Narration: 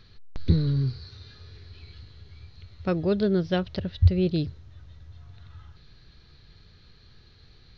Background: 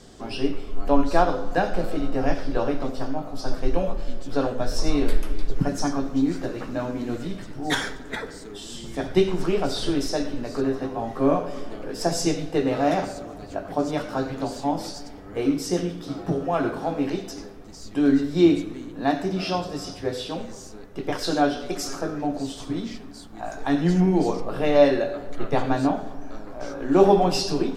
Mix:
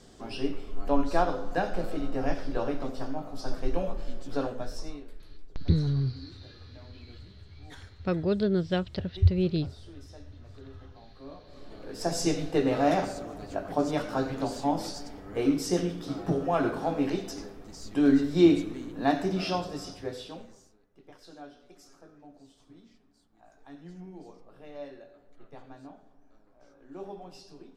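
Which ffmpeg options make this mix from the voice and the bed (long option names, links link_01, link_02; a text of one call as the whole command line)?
ffmpeg -i stem1.wav -i stem2.wav -filter_complex "[0:a]adelay=5200,volume=-2.5dB[link_01];[1:a]volume=17dB,afade=type=out:start_time=4.35:duration=0.69:silence=0.105925,afade=type=in:start_time=11.45:duration=0.96:silence=0.0707946,afade=type=out:start_time=19.29:duration=1.49:silence=0.0707946[link_02];[link_01][link_02]amix=inputs=2:normalize=0" out.wav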